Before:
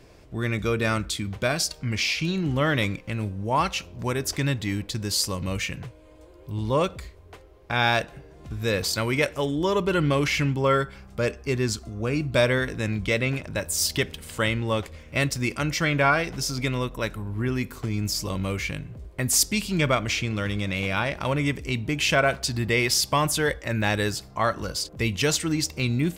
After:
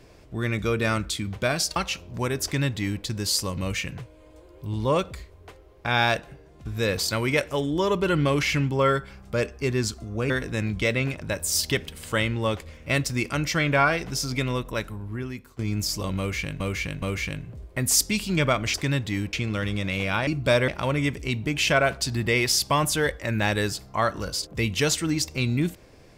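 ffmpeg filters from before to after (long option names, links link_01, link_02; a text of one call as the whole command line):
ffmpeg -i in.wav -filter_complex "[0:a]asplit=11[link_01][link_02][link_03][link_04][link_05][link_06][link_07][link_08][link_09][link_10][link_11];[link_01]atrim=end=1.762[link_12];[link_02]atrim=start=3.608:end=8.5,asetpts=PTS-STARTPTS,afade=type=out:start_time=4.422:duration=0.47:silence=0.501187[link_13];[link_03]atrim=start=8.5:end=12.152,asetpts=PTS-STARTPTS,afade=type=in:duration=0.004:curve=hsin:silence=0.501187[link_14];[link_04]atrim=start=12.558:end=17.85,asetpts=PTS-STARTPTS,afade=type=out:start_time=4.402:duration=0.89:silence=0.141254[link_15];[link_05]atrim=start=17.85:end=18.862,asetpts=PTS-STARTPTS,afade=type=in:duration=0.004:curve=hsin:silence=0.141254[link_16];[link_06]atrim=start=18.438:end=18.862[link_17];[link_07]atrim=start=18.438:end=20.162[link_18];[link_08]atrim=start=4.288:end=4.882[link_19];[link_09]atrim=start=20.158:end=21.102[link_20];[link_10]atrim=start=12.148:end=12.562[link_21];[link_11]atrim=start=21.098[link_22];[link_13][link_14]concat=n=2:v=0:a=1[link_23];[link_12][link_23]acrossfade=duration=0.004:curve1=hsin:curve2=hsin[link_24];[link_15][link_16]concat=n=2:v=0:a=1[link_25];[link_24][link_25]acrossfade=duration=0.004:curve1=hsin:curve2=hsin[link_26];[link_26][link_17]acrossfade=duration=0.004:curve1=hsin:curve2=hsin[link_27];[link_27][link_18]acrossfade=duration=0.004:curve1=hsin:curve2=hsin[link_28];[link_28][link_19]acrossfade=duration=0.004:curve1=hsin:curve2=hsin[link_29];[link_29][link_20]acrossfade=duration=0.004:curve1=hsin:curve2=hsin[link_30];[link_30][link_21]acrossfade=duration=0.004:curve1=hsin:curve2=hsin[link_31];[link_31][link_22]acrossfade=duration=0.004:curve1=hsin:curve2=hsin" out.wav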